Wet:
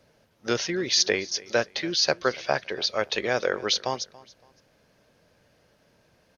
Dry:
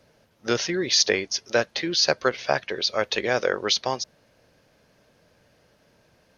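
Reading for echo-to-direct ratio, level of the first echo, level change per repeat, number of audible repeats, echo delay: -21.0 dB, -21.5 dB, -10.0 dB, 2, 282 ms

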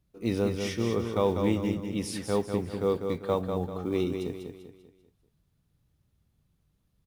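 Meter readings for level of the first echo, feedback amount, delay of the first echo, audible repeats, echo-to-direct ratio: -6.0 dB, 41%, 196 ms, 4, -5.0 dB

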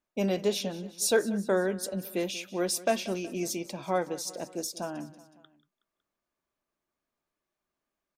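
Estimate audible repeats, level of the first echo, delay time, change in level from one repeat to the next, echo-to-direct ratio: 3, -18.0 dB, 185 ms, -4.5 dB, -16.5 dB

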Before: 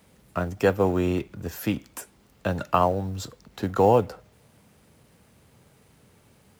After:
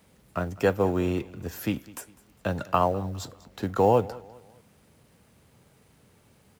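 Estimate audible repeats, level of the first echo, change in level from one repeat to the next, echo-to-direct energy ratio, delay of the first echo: 2, -21.0 dB, -8.0 dB, -20.5 dB, 202 ms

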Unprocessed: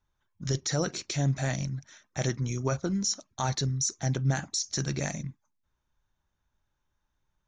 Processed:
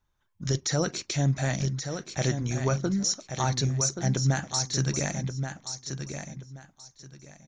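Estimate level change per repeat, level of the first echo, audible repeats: -13.0 dB, -7.5 dB, 3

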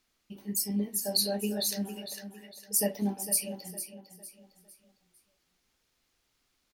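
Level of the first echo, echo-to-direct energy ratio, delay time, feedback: -11.0 dB, -10.5 dB, 455 ms, 36%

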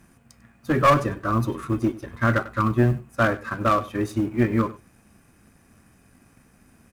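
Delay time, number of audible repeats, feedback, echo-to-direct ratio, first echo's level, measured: 97 ms, 1, no regular repeats, -18.0 dB, -18.0 dB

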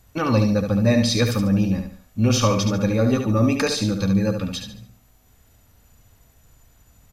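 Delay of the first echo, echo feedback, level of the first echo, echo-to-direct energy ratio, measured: 72 ms, 35%, -6.5 dB, -6.0 dB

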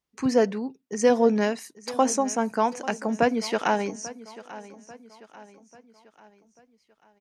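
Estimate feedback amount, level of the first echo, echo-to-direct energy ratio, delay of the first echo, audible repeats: 47%, -17.5 dB, -16.5 dB, 841 ms, 3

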